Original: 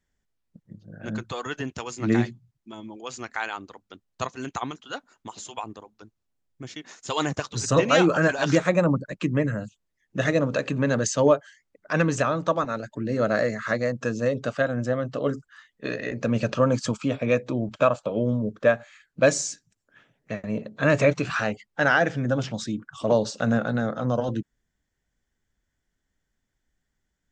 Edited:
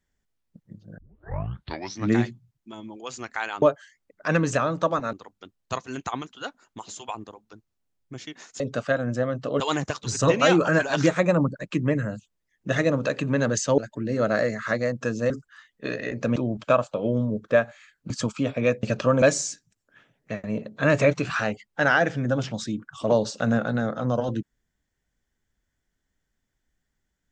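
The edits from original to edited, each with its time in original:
0.98 tape start 1.14 s
11.27–12.78 move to 3.62
14.3–15.3 move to 7.09
16.36–16.75 swap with 17.48–19.22

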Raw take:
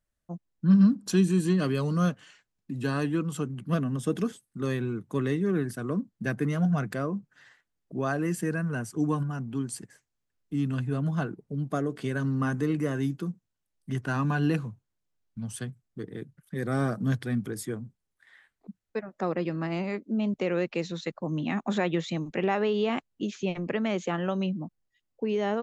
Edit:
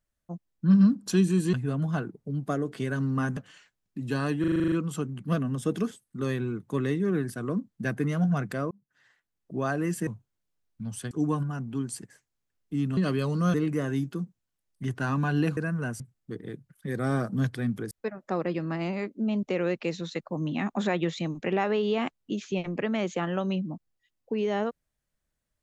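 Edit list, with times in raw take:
1.53–2.1 swap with 10.77–12.61
3.13 stutter 0.04 s, 9 plays
7.12–7.97 fade in
8.48–8.91 swap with 14.64–15.68
17.59–18.82 cut

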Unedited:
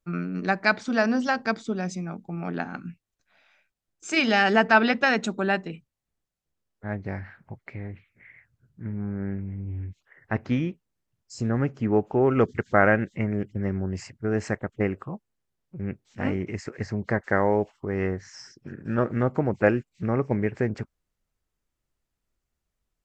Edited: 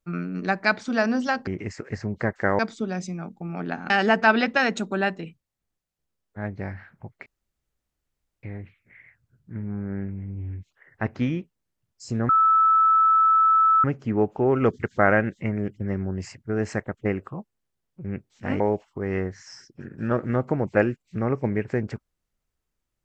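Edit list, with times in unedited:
2.78–4.37 cut
7.73 insert room tone 1.17 s
11.59 add tone 1310 Hz -14.5 dBFS 1.55 s
16.35–17.47 move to 1.47

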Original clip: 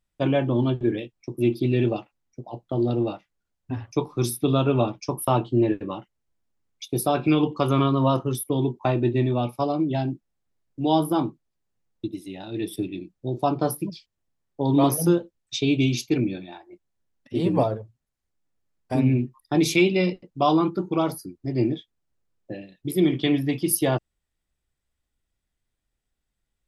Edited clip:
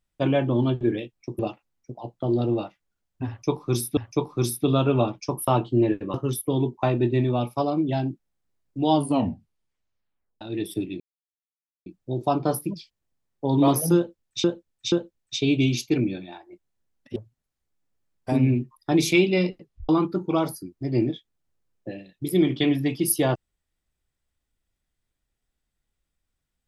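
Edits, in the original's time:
1.39–1.88 cut
3.77–4.46 loop, 2 plays
5.94–8.16 cut
10.93 tape stop 1.50 s
13.02 insert silence 0.86 s
15.12–15.6 loop, 3 plays
17.36–17.79 cut
20.24 tape stop 0.28 s

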